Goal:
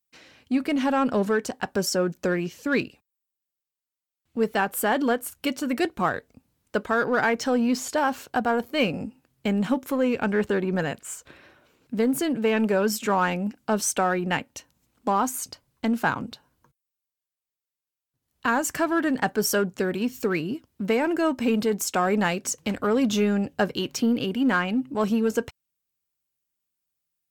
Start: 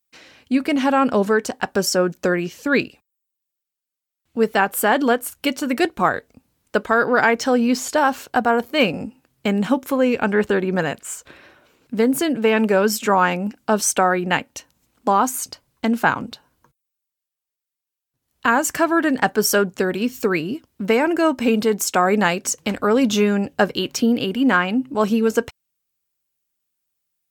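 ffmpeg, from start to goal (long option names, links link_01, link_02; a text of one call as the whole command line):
ffmpeg -i in.wav -filter_complex "[0:a]equalizer=frequency=110:width_type=o:width=2.4:gain=3.5,asplit=2[link_01][link_02];[link_02]volume=18.5dB,asoftclip=hard,volume=-18.5dB,volume=-8.5dB[link_03];[link_01][link_03]amix=inputs=2:normalize=0,volume=-8dB" out.wav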